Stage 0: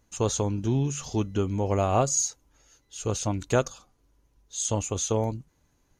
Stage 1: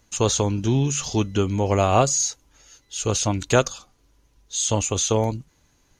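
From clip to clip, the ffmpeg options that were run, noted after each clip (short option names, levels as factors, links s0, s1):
-filter_complex "[0:a]equalizer=f=3900:t=o:w=2.5:g=6.5,acrossover=split=590|4300[s0][s1][s2];[s2]alimiter=limit=0.0841:level=0:latency=1[s3];[s0][s1][s3]amix=inputs=3:normalize=0,volume=1.68"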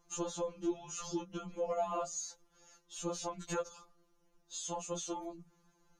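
-af "acompressor=threshold=0.0501:ratio=6,highshelf=f=1600:t=q:w=1.5:g=-6.5,afftfilt=real='re*2.83*eq(mod(b,8),0)':imag='im*2.83*eq(mod(b,8),0)':win_size=2048:overlap=0.75,volume=0.668"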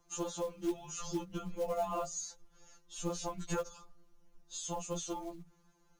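-filter_complex "[0:a]acrossover=split=120|1100[s0][s1][s2];[s0]dynaudnorm=f=210:g=9:m=4.47[s3];[s1]acrusher=bits=5:mode=log:mix=0:aa=0.000001[s4];[s3][s4][s2]amix=inputs=3:normalize=0"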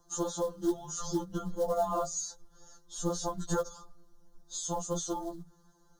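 -af "asuperstop=centerf=2400:order=4:qfactor=1.3,volume=1.78"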